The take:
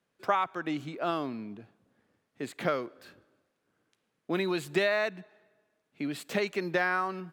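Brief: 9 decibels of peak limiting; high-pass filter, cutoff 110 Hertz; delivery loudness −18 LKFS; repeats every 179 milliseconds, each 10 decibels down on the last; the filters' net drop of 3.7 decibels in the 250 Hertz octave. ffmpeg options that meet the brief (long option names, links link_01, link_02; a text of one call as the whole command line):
ffmpeg -i in.wav -af "highpass=110,equalizer=frequency=250:width_type=o:gain=-5.5,alimiter=limit=-22dB:level=0:latency=1,aecho=1:1:179|358|537|716:0.316|0.101|0.0324|0.0104,volume=16.5dB" out.wav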